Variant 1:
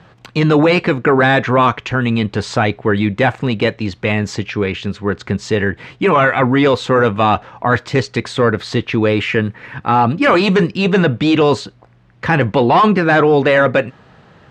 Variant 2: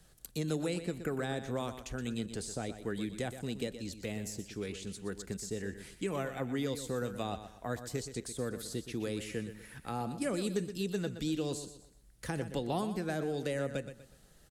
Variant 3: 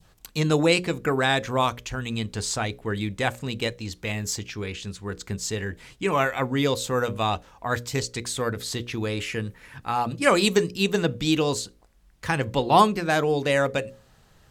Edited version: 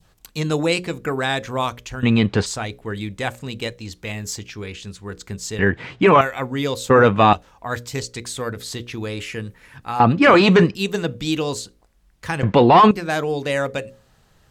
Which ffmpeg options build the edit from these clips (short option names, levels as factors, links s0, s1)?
-filter_complex "[0:a]asplit=5[s0][s1][s2][s3][s4];[2:a]asplit=6[s5][s6][s7][s8][s9][s10];[s5]atrim=end=2.032[s11];[s0]atrim=start=2.028:end=2.462[s12];[s6]atrim=start=2.458:end=5.592[s13];[s1]atrim=start=5.588:end=6.212[s14];[s7]atrim=start=6.208:end=6.902[s15];[s2]atrim=start=6.898:end=7.332[s16];[s8]atrim=start=7.328:end=10.002[s17];[s3]atrim=start=9.998:end=10.752[s18];[s9]atrim=start=10.748:end=12.432[s19];[s4]atrim=start=12.428:end=12.912[s20];[s10]atrim=start=12.908[s21];[s11][s12]acrossfade=d=0.004:c1=hsin:c2=hsin[s22];[s22][s13]acrossfade=d=0.004:c1=hsin:c2=hsin[s23];[s23][s14]acrossfade=d=0.004:c1=hsin:c2=hsin[s24];[s24][s15]acrossfade=d=0.004:c1=hsin:c2=hsin[s25];[s25][s16]acrossfade=d=0.004:c1=hsin:c2=hsin[s26];[s26][s17]acrossfade=d=0.004:c1=hsin:c2=hsin[s27];[s27][s18]acrossfade=d=0.004:c1=hsin:c2=hsin[s28];[s28][s19]acrossfade=d=0.004:c1=hsin:c2=hsin[s29];[s29][s20]acrossfade=d=0.004:c1=hsin:c2=hsin[s30];[s30][s21]acrossfade=d=0.004:c1=hsin:c2=hsin"